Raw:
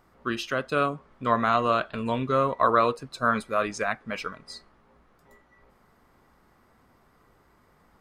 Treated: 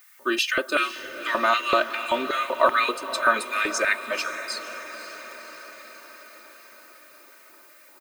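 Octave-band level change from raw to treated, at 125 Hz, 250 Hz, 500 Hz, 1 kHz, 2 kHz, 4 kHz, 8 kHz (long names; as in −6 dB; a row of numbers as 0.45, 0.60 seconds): below −15 dB, −3.0 dB, 0.0 dB, +1.0 dB, +8.0 dB, +9.5 dB, +11.0 dB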